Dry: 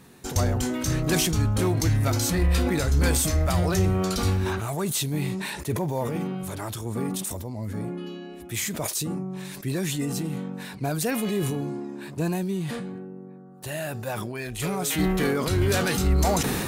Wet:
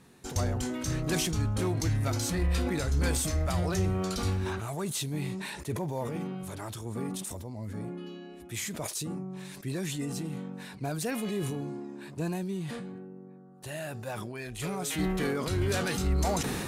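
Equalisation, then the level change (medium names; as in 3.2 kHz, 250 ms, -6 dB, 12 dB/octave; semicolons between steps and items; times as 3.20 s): low-pass 12 kHz 12 dB/octave; -6.0 dB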